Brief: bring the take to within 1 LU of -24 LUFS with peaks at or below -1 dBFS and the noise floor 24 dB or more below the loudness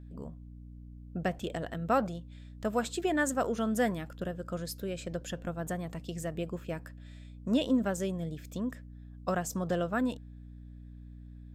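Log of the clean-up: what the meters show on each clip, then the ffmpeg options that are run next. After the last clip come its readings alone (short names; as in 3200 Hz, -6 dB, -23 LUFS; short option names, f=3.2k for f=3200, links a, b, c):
hum 60 Hz; harmonics up to 300 Hz; hum level -45 dBFS; loudness -33.5 LUFS; peak -15.5 dBFS; loudness target -24.0 LUFS
-> -af "bandreject=f=60:t=h:w=6,bandreject=f=120:t=h:w=6,bandreject=f=180:t=h:w=6,bandreject=f=240:t=h:w=6,bandreject=f=300:t=h:w=6"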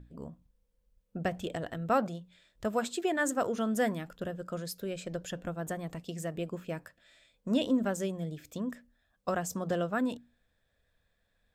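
hum none; loudness -34.0 LUFS; peak -16.0 dBFS; loudness target -24.0 LUFS
-> -af "volume=10dB"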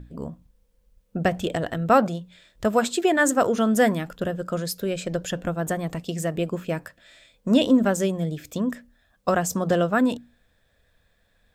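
loudness -24.0 LUFS; peak -6.0 dBFS; noise floor -66 dBFS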